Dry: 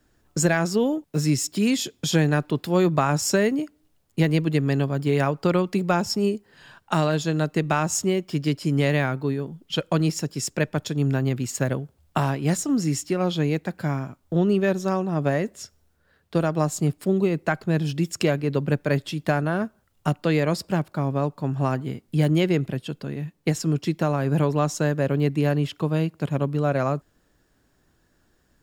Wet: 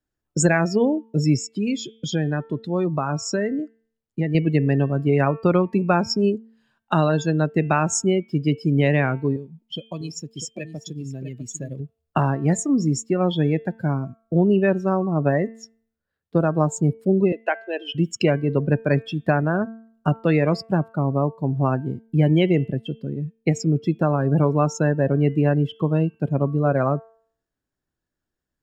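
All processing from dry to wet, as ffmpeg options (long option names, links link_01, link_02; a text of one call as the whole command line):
ffmpeg -i in.wav -filter_complex "[0:a]asettb=1/sr,asplit=3[link_01][link_02][link_03];[link_01]atrim=end=1.374[link_04];[link_02]atrim=start=1.37:end=4.35,asetpts=PTS-STARTPTS,afade=type=in:duration=0.004:curve=qsin,afade=type=out:start_time=2.976:duration=0.004:curve=qsin,lowpass=8200,acompressor=threshold=-31dB:ratio=1.5:attack=3.2:release=140:knee=1:detection=peak[link_05];[link_03]atrim=start=4.346[link_06];[link_04][link_05]acrossfade=duration=0.004:curve1=hsin:curve2=qsin[link_07];[link_07][link_06]acrossfade=duration=0.004:curve1=qsin:curve2=hsin,asettb=1/sr,asplit=3[link_08][link_09][link_10];[link_08]atrim=end=9.364[link_11];[link_09]atrim=start=9.36:end=11.8,asetpts=PTS-STARTPTS,afade=type=in:duration=0.004:curve=qsin,afade=type=out:start_time=2.436:duration=0.004:curve=qsin,bandreject=frequency=1500:width=5.7,acrossover=split=1200|2400|7000[link_12][link_13][link_14][link_15];[link_12]acompressor=threshold=-36dB:ratio=3[link_16];[link_13]acompressor=threshold=-53dB:ratio=3[link_17];[link_14]acompressor=threshold=-35dB:ratio=3[link_18];[link_15]acompressor=threshold=-36dB:ratio=3[link_19];[link_16][link_17][link_18][link_19]amix=inputs=4:normalize=0,aecho=1:1:647:0.422,atrim=end_sample=107604[link_20];[link_10]atrim=start=11.796[link_21];[link_11][link_20]acrossfade=duration=0.004:curve1=hsin:curve2=qsin[link_22];[link_22][link_21]acrossfade=duration=0.004:curve1=qsin:curve2=hsin,asettb=1/sr,asplit=3[link_23][link_24][link_25];[link_23]atrim=end=17.324[link_26];[link_24]atrim=start=17.32:end=17.95,asetpts=PTS-STARTPTS,afade=type=in:duration=0.004:curve=qsin,afade=type=out:start_time=0.626:duration=0.004:curve=qsin,highpass=frequency=410:width=0.5412,highpass=frequency=410:width=1.3066,equalizer=frequency=1200:width_type=q:width=4:gain=-8,equalizer=frequency=3000:width_type=q:width=4:gain=10,equalizer=frequency=7600:width_type=q:width=4:gain=-7,lowpass=frequency=9700:width=0.5412,lowpass=frequency=9700:width=1.3066,bandreject=frequency=4700:width=17[link_27];[link_25]atrim=start=17.946[link_28];[link_26][link_27]acrossfade=duration=0.004:curve1=hsin:curve2=qsin[link_29];[link_29][link_28]acrossfade=duration=0.004:curve1=qsin:curve2=hsin,afftdn=noise_reduction=23:noise_floor=-30,bandreject=frequency=224.8:width_type=h:width=4,bandreject=frequency=449.6:width_type=h:width=4,bandreject=frequency=674.4:width_type=h:width=4,bandreject=frequency=899.2:width_type=h:width=4,bandreject=frequency=1124:width_type=h:width=4,bandreject=frequency=1348.8:width_type=h:width=4,bandreject=frequency=1573.6:width_type=h:width=4,bandreject=frequency=1798.4:width_type=h:width=4,bandreject=frequency=2023.2:width_type=h:width=4,bandreject=frequency=2248:width_type=h:width=4,bandreject=frequency=2472.8:width_type=h:width=4,bandreject=frequency=2697.6:width_type=h:width=4,bandreject=frequency=2922.4:width_type=h:width=4,bandreject=frequency=3147.2:width_type=h:width=4,bandreject=frequency=3372:width_type=h:width=4,bandreject=frequency=3596.8:width_type=h:width=4,volume=3dB" out.wav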